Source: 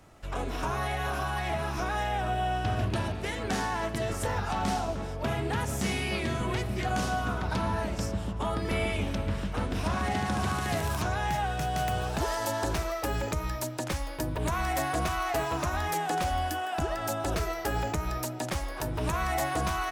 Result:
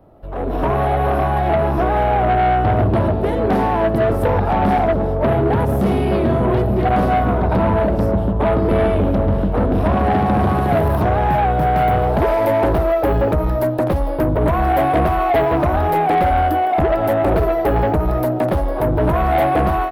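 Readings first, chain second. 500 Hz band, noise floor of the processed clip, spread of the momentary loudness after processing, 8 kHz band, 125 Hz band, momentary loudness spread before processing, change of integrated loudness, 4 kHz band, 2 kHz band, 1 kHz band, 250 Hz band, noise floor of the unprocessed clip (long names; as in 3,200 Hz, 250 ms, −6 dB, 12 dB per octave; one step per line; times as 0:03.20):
+17.0 dB, −20 dBFS, 3 LU, can't be measured, +13.5 dB, 4 LU, +14.0 dB, 0.0 dB, +6.5 dB, +13.5 dB, +15.0 dB, −36 dBFS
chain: drawn EQ curve 130 Hz 0 dB, 620 Hz +5 dB, 2,200 Hz −18 dB, 7,200 Hz −18 dB, 12,000 Hz 0 dB
soft clipping −27.5 dBFS, distortion −13 dB
automatic gain control gain up to 11 dB
high shelf with overshoot 5,100 Hz −9.5 dB, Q 1.5
level +5.5 dB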